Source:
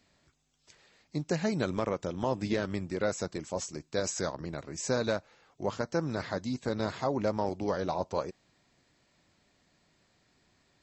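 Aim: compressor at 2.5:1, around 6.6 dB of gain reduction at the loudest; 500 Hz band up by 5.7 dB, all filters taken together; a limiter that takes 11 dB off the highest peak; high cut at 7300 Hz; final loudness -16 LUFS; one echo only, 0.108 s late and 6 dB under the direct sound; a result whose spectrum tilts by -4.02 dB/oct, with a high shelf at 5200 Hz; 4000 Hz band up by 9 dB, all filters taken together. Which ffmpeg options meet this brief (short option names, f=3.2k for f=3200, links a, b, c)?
-af "lowpass=7.3k,equalizer=f=500:t=o:g=6.5,equalizer=f=4k:t=o:g=8.5,highshelf=f=5.2k:g=5.5,acompressor=threshold=-30dB:ratio=2.5,alimiter=level_in=2.5dB:limit=-24dB:level=0:latency=1,volume=-2.5dB,aecho=1:1:108:0.501,volume=21dB"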